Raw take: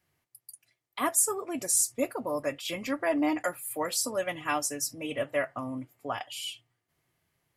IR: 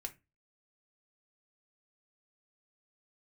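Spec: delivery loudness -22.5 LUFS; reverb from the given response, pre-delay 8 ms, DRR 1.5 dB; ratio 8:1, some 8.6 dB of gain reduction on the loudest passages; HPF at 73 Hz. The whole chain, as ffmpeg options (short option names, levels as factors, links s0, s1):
-filter_complex "[0:a]highpass=73,acompressor=threshold=0.0355:ratio=8,asplit=2[s0][s1];[1:a]atrim=start_sample=2205,adelay=8[s2];[s1][s2]afir=irnorm=-1:irlink=0,volume=1.12[s3];[s0][s3]amix=inputs=2:normalize=0,volume=3.16"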